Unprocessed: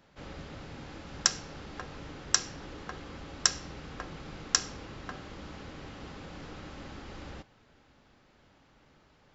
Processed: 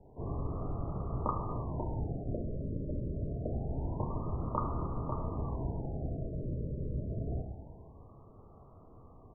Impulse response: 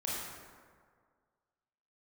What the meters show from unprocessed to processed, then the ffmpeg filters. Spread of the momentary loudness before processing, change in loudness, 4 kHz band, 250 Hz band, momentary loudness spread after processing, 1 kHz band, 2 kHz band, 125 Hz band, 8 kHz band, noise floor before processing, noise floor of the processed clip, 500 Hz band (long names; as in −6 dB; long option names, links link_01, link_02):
16 LU, −2.5 dB, below −40 dB, +6.0 dB, 20 LU, +2.5 dB, below −30 dB, +11.5 dB, can't be measured, −63 dBFS, −56 dBFS, +6.0 dB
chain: -filter_complex "[0:a]asuperstop=centerf=2000:order=12:qfactor=1.3,acrossover=split=1000[link_01][link_02];[link_02]adelay=30[link_03];[link_01][link_03]amix=inputs=2:normalize=0,asplit=2[link_04][link_05];[1:a]atrim=start_sample=2205,asetrate=48510,aresample=44100[link_06];[link_05][link_06]afir=irnorm=-1:irlink=0,volume=-4dB[link_07];[link_04][link_07]amix=inputs=2:normalize=0,afreqshift=-140,afftfilt=real='re*lt(b*sr/1024,620*pow(1500/620,0.5+0.5*sin(2*PI*0.26*pts/sr)))':imag='im*lt(b*sr/1024,620*pow(1500/620,0.5+0.5*sin(2*PI*0.26*pts/sr)))':win_size=1024:overlap=0.75,volume=5dB"